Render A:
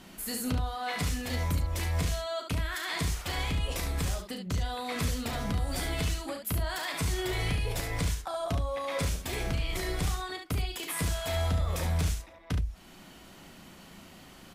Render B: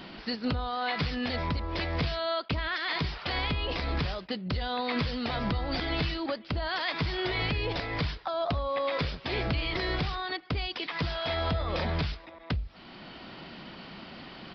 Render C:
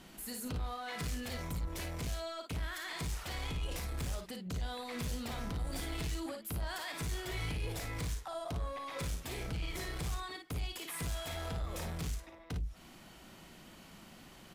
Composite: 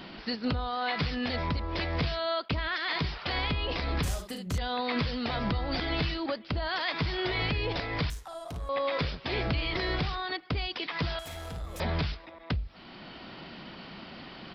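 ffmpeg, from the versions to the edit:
-filter_complex "[2:a]asplit=2[a][b];[1:a]asplit=4[c][d][e][f];[c]atrim=end=4.032[g];[0:a]atrim=start=4.028:end=4.582[h];[d]atrim=start=4.578:end=8.102[i];[a]atrim=start=8.098:end=8.692[j];[e]atrim=start=8.688:end=11.192[k];[b]atrim=start=11.188:end=11.802[l];[f]atrim=start=11.798[m];[g][h]acrossfade=d=0.004:c1=hsin:c2=hsin[n];[n][i]acrossfade=d=0.004:c1=hsin:c2=hsin[o];[o][j]acrossfade=d=0.004:c1=hsin:c2=hsin[p];[p][k]acrossfade=d=0.004:c1=hsin:c2=hsin[q];[q][l]acrossfade=d=0.004:c1=hsin:c2=hsin[r];[r][m]acrossfade=d=0.004:c1=hsin:c2=hsin"

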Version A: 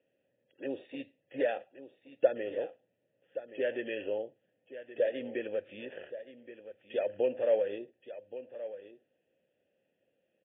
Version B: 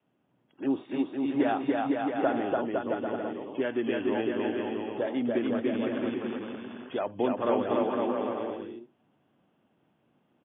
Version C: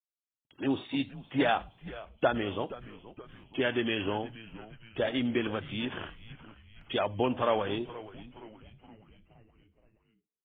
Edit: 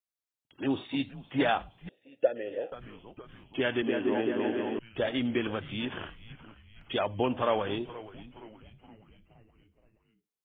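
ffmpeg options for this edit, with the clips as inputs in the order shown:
-filter_complex "[2:a]asplit=3[a][b][c];[a]atrim=end=1.892[d];[0:a]atrim=start=1.888:end=2.722[e];[b]atrim=start=2.718:end=3.822[f];[1:a]atrim=start=3.818:end=4.792[g];[c]atrim=start=4.788[h];[d][e]acrossfade=d=0.004:c1=hsin:c2=hsin[i];[i][f]acrossfade=d=0.004:c1=hsin:c2=hsin[j];[j][g]acrossfade=d=0.004:c1=hsin:c2=hsin[k];[k][h]acrossfade=d=0.004:c1=hsin:c2=hsin"

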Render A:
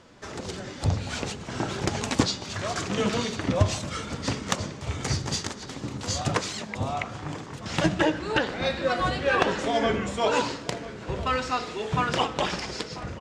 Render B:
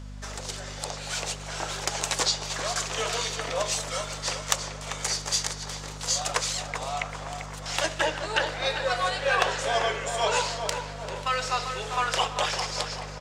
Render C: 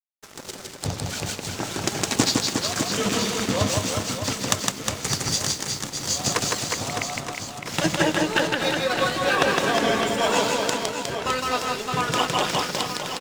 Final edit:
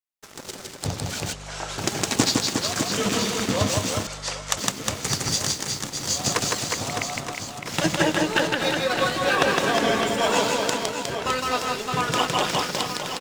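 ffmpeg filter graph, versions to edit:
-filter_complex "[1:a]asplit=2[a][b];[2:a]asplit=3[c][d][e];[c]atrim=end=1.332[f];[a]atrim=start=1.328:end=1.782[g];[d]atrim=start=1.778:end=4.072[h];[b]atrim=start=4.068:end=4.572[i];[e]atrim=start=4.568[j];[f][g]acrossfade=d=0.004:c1=hsin:c2=hsin[k];[k][h]acrossfade=d=0.004:c1=hsin:c2=hsin[l];[l][i]acrossfade=d=0.004:c1=hsin:c2=hsin[m];[m][j]acrossfade=d=0.004:c1=hsin:c2=hsin"

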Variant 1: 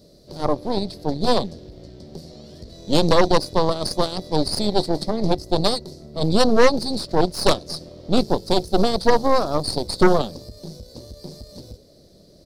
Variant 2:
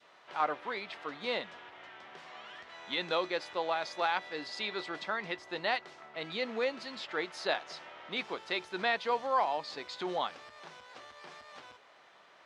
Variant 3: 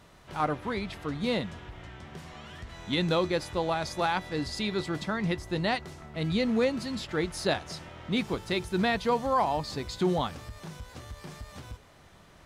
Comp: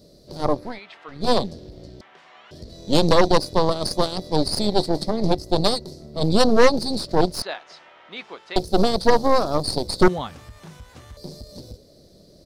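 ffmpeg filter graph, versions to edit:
-filter_complex "[1:a]asplit=3[a][b][c];[0:a]asplit=5[d][e][f][g][h];[d]atrim=end=0.8[i];[a]atrim=start=0.56:end=1.32[j];[e]atrim=start=1.08:end=2.012[k];[b]atrim=start=2.008:end=2.512[l];[f]atrim=start=2.508:end=7.422[m];[c]atrim=start=7.418:end=8.562[n];[g]atrim=start=8.558:end=10.082[o];[2:a]atrim=start=10.078:end=11.172[p];[h]atrim=start=11.168[q];[i][j]acrossfade=d=0.24:c1=tri:c2=tri[r];[r][k]acrossfade=d=0.24:c1=tri:c2=tri[s];[s][l]acrossfade=d=0.004:c1=hsin:c2=hsin[t];[t][m]acrossfade=d=0.004:c1=hsin:c2=hsin[u];[u][n]acrossfade=d=0.004:c1=hsin:c2=hsin[v];[v][o]acrossfade=d=0.004:c1=hsin:c2=hsin[w];[w][p]acrossfade=d=0.004:c1=hsin:c2=hsin[x];[x][q]acrossfade=d=0.004:c1=hsin:c2=hsin"

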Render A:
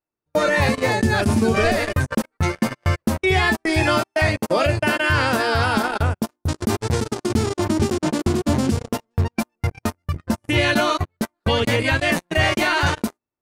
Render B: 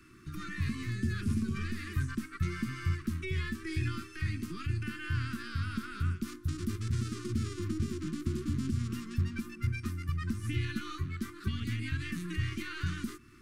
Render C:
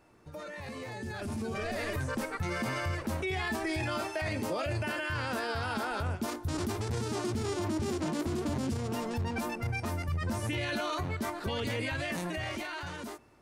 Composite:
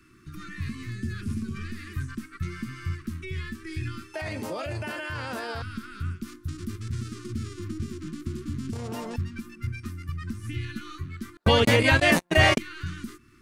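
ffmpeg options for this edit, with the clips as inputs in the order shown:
-filter_complex "[2:a]asplit=2[a][b];[1:a]asplit=4[c][d][e][f];[c]atrim=end=4.142[g];[a]atrim=start=4.138:end=5.622[h];[d]atrim=start=5.618:end=8.732[i];[b]atrim=start=8.728:end=9.162[j];[e]atrim=start=9.158:end=11.372[k];[0:a]atrim=start=11.368:end=12.582[l];[f]atrim=start=12.578[m];[g][h]acrossfade=d=0.004:c1=hsin:c2=hsin[n];[n][i]acrossfade=d=0.004:c1=hsin:c2=hsin[o];[o][j]acrossfade=d=0.004:c1=hsin:c2=hsin[p];[p][k]acrossfade=d=0.004:c1=hsin:c2=hsin[q];[q][l]acrossfade=d=0.004:c1=hsin:c2=hsin[r];[r][m]acrossfade=d=0.004:c1=hsin:c2=hsin"

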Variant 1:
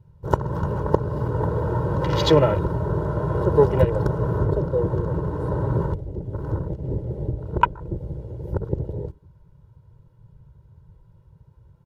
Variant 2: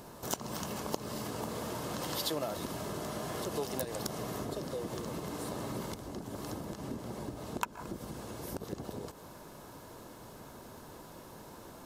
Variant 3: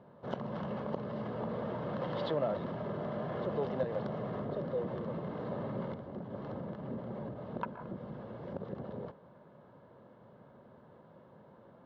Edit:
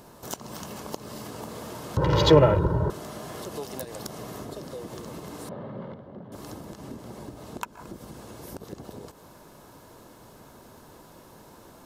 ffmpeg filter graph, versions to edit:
-filter_complex "[1:a]asplit=3[a][b][c];[a]atrim=end=1.972[d];[0:a]atrim=start=1.968:end=2.902[e];[b]atrim=start=2.898:end=5.492[f];[2:a]atrim=start=5.488:end=6.322[g];[c]atrim=start=6.318[h];[d][e]acrossfade=d=0.004:c1=hsin:c2=hsin[i];[i][f]acrossfade=d=0.004:c1=hsin:c2=hsin[j];[j][g]acrossfade=d=0.004:c1=hsin:c2=hsin[k];[k][h]acrossfade=d=0.004:c1=hsin:c2=hsin"

